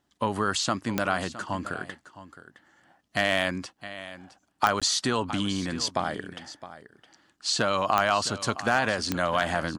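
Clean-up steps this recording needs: clip repair -10.5 dBFS; de-click; interpolate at 4.80 s, 16 ms; inverse comb 664 ms -15 dB

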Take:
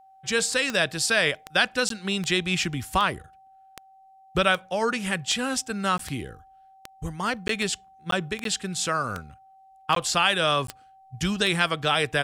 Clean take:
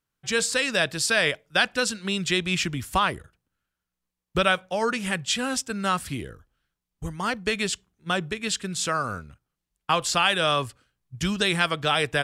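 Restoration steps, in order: de-click; band-stop 770 Hz, Q 30; interpolate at 1.89/5.98/7.48/8.11/8.44/9.95/10.67 s, 13 ms

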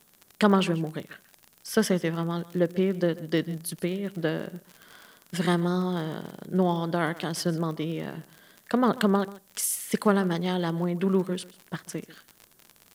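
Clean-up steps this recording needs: de-click; expander -51 dBFS, range -21 dB; inverse comb 140 ms -19 dB

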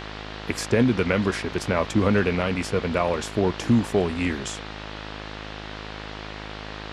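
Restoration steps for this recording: de-hum 52.5 Hz, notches 37; noise print and reduce 30 dB

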